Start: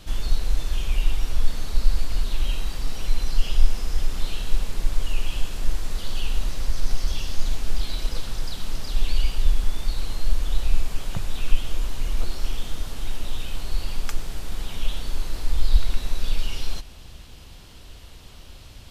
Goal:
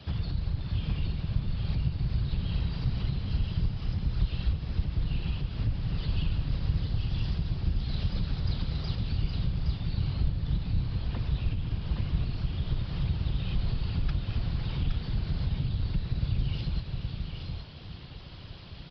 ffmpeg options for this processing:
-filter_complex "[0:a]acompressor=threshold=-24dB:ratio=6,afftfilt=real='hypot(re,im)*cos(2*PI*random(0))':imag='hypot(re,im)*sin(2*PI*random(1))':win_size=512:overlap=0.75,afreqshift=17,asplit=2[a][b];[b]aecho=0:1:144|218|470|505|817|853:0.112|0.2|0.133|0.188|0.562|0.168[c];[a][c]amix=inputs=2:normalize=0,aresample=11025,aresample=44100,volume=4dB"

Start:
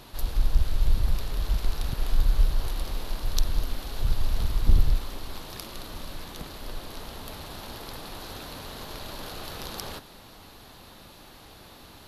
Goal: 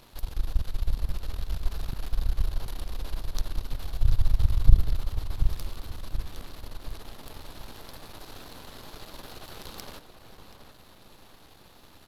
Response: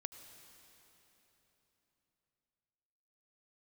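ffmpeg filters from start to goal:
-filter_complex "[0:a]aeval=exprs='if(lt(val(0),0),0.251*val(0),val(0))':c=same,asettb=1/sr,asplit=3[a][b][c];[a]atrim=end=3.734[d];[b]atrim=start=3.73:end=4.76,asetpts=PTS-STARTPTS,afade=t=in:d=0.004:c=qsin,afade=t=out:st=1.026:d=0.004:c=qsin,lowshelf=f=160:t=q:w=1.5:g=8[e];[c]atrim=start=4.756[f];[d][e]acrossfade=d=0.004:c1=hsin:c2=qsin[g];[g][f]acrossfade=d=0.004:c1=qsin:c2=hsin,asplit=2[h][i];[i]adelay=729,lowpass=f=2k:p=1,volume=-8.5dB,asplit=2[j][k];[k]adelay=729,lowpass=f=2k:p=1,volume=0.43,asplit=2[l][m];[m]adelay=729,lowpass=f=2k:p=1,volume=0.43,asplit=2[n][o];[o]adelay=729,lowpass=f=2k:p=1,volume=0.43,asplit=2[p][q];[q]adelay=729,lowpass=f=2k:p=1,volume=0.43[r];[j][l][n][p][r]amix=inputs=5:normalize=0[s];[h][s]amix=inputs=2:normalize=0,volume=-3dB"

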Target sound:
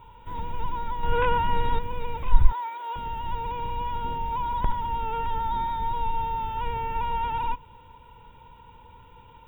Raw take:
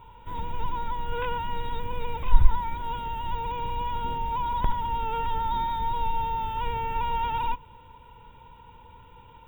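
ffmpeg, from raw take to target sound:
-filter_complex "[0:a]asettb=1/sr,asplit=3[a][b][c];[a]atrim=end=1.034[d];[b]atrim=start=1.03:end=1.79,asetpts=PTS-STARTPTS,afade=t=in:d=0.004:c=qsin,afade=t=out:st=0.756:d=0.004:c=qsin,acontrast=79[e];[c]atrim=start=1.786[f];[d][e]acrossfade=d=0.004:c1=hsin:c2=qsin[g];[g][f]acrossfade=d=0.004:c1=qsin:c2=hsin,asettb=1/sr,asplit=3[h][i][j];[h]atrim=end=2.524[k];[i]atrim=start=2.52:end=2.96,asetpts=PTS-STARTPTS,afade=t=in:d=0.004:c=qsin,afade=t=out:st=0.436:d=0.004:c=qsin,highpass=f=430:w=0.5412,highpass=f=430:w=1.3066[l];[j]atrim=start=2.956[m];[k][l]acrossfade=d=0.004:c1=hsin:c2=qsin[n];[n][m]acrossfade=d=0.004:c1=qsin:c2=hsin,acrossover=split=3000[o][p];[p]acompressor=threshold=-53dB:ratio=4:attack=1:release=60[q];[o][q]amix=inputs=2:normalize=0"

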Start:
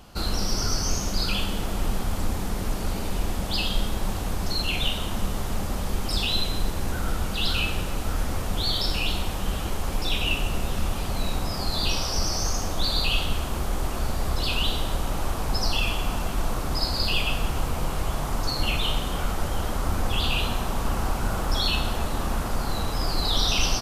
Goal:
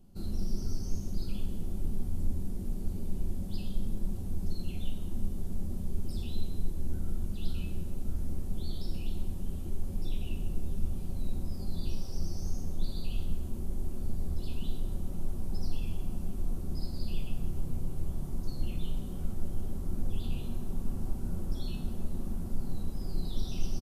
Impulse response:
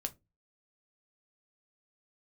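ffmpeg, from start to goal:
-filter_complex "[0:a]firequalizer=gain_entry='entry(270,0);entry(620,-14);entry(1200,-21);entry(10000,-8)':delay=0.05:min_phase=1[a];[1:a]atrim=start_sample=2205,asetrate=57330,aresample=44100[b];[a][b]afir=irnorm=-1:irlink=0,volume=-5dB"

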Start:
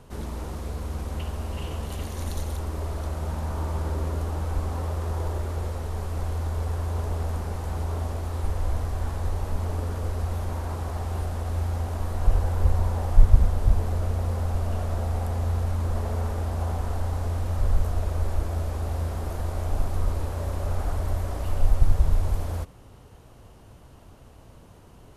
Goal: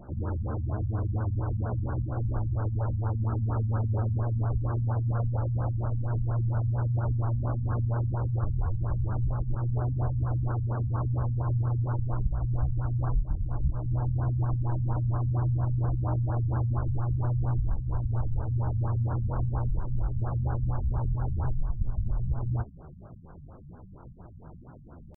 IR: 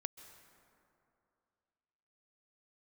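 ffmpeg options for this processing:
-af "acompressor=threshold=-25dB:ratio=16,asetrate=62367,aresample=44100,atempo=0.707107,afftfilt=real='re*lt(b*sr/1024,220*pow(1700/220,0.5+0.5*sin(2*PI*4.3*pts/sr)))':imag='im*lt(b*sr/1024,220*pow(1700/220,0.5+0.5*sin(2*PI*4.3*pts/sr)))':win_size=1024:overlap=0.75,volume=3dB"

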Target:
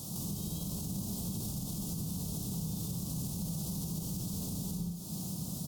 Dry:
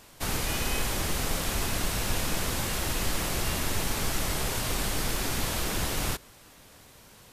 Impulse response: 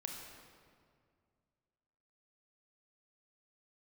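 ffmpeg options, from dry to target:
-filter_complex "[0:a]highpass=56,equalizer=f=140:t=o:w=0.9:g=14.5,asetrate=56889,aresample=44100,bass=f=250:g=11,treble=f=4k:g=11,bandreject=f=60:t=h:w=6,bandreject=f=120:t=h:w=6,bandreject=f=180:t=h:w=6,bandreject=f=240:t=h:w=6,bandreject=f=300:t=h:w=6,bandreject=f=360:t=h:w=6,bandreject=f=420:t=h:w=6,bandreject=f=480:t=h:w=6,bandreject=f=540:t=h:w=6,bandreject=f=600:t=h:w=6,asplit=2[a][b];[b]adelay=64,lowpass=f=2.2k:p=1,volume=-12.5dB,asplit=2[c][d];[d]adelay=64,lowpass=f=2.2k:p=1,volume=0.16[e];[a][c][e]amix=inputs=3:normalize=0,acompressor=threshold=-33dB:ratio=10[f];[1:a]atrim=start_sample=2205,afade=t=out:st=0.28:d=0.01,atrim=end_sample=12789,asetrate=52920,aresample=44100[g];[f][g]afir=irnorm=-1:irlink=0,alimiter=level_in=11dB:limit=-24dB:level=0:latency=1:release=99,volume=-11dB,asuperstop=centerf=1900:order=4:qfactor=0.71,volume=7dB" -ar 44100 -c:a sbc -b:a 192k

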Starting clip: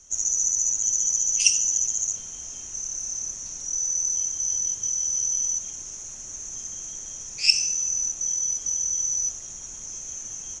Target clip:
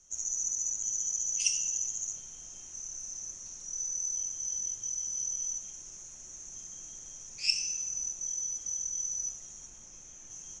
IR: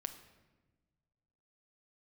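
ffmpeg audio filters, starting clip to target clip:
-filter_complex "[0:a]asettb=1/sr,asplit=3[a][b][c];[a]atrim=end=9.664[d];[b]atrim=start=9.66:end=10.3,asetpts=PTS-STARTPTS,afade=t=in:d=0.004:c=qsin,afade=t=out:st=0.636:d=0.004:c=qsin,acrossover=split=3900[e][f];[f]acompressor=threshold=-39dB:ratio=4:attack=1:release=60[g];[e][g]amix=inputs=2:normalize=0[h];[c]atrim=start=10.296[i];[d][h]acrossfade=d=0.004:c1=hsin:c2=qsin[j];[j][i]acrossfade=d=0.004:c1=qsin:c2=hsin[k];[1:a]atrim=start_sample=2205,asetrate=48510,aresample=44100[l];[k][l]afir=irnorm=-1:irlink=0,volume=-6.5dB"

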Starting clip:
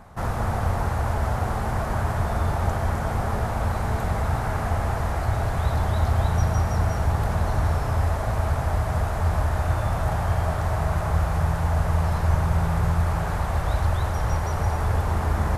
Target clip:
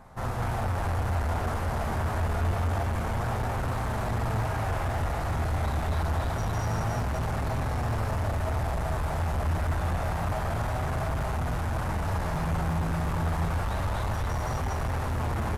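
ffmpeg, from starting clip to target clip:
-af "aecho=1:1:43.73|236.2:0.501|0.891,volume=21dB,asoftclip=hard,volume=-21dB,flanger=delay=7.6:depth=5.3:regen=67:speed=0.27:shape=sinusoidal"

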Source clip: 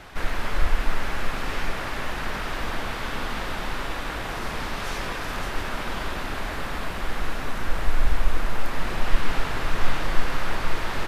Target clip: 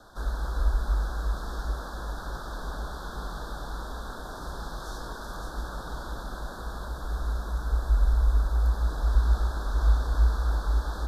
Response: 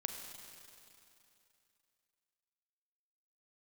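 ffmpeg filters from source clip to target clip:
-af "afreqshift=-61,asuperstop=centerf=2400:order=12:qfactor=1.3,volume=-7dB"

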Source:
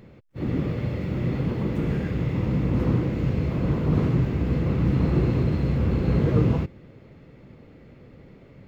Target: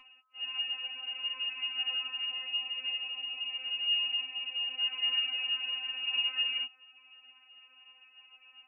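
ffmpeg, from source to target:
-filter_complex "[0:a]lowshelf=f=100:g=-9,lowpass=f=2.6k:t=q:w=0.5098,lowpass=f=2.6k:t=q:w=0.6013,lowpass=f=2.6k:t=q:w=0.9,lowpass=f=2.6k:t=q:w=2.563,afreqshift=-3000,asettb=1/sr,asplit=3[a][b][c];[a]atrim=end=2.484[d];[b]atrim=start=2.48:end=4.8,asetpts=PTS-STARTPTS,afade=t=in:d=0.004:c=qsin,afade=t=out:st=2.316:d=0.004:c=qsin,equalizer=f=1.6k:w=1.6:g=-8.5[e];[c]atrim=start=4.796[f];[d][e]acrossfade=d=0.004:c1=hsin:c2=qsin[g];[g][f]acrossfade=d=0.004:c1=qsin:c2=hsin,acompressor=mode=upward:threshold=-43dB:ratio=2.5,aeval=exprs='val(0)+0.02*sin(2*PI*1200*n/s)':c=same,afftfilt=real='re*3.46*eq(mod(b,12),0)':imag='im*3.46*eq(mod(b,12),0)':win_size=2048:overlap=0.75,volume=-7.5dB"

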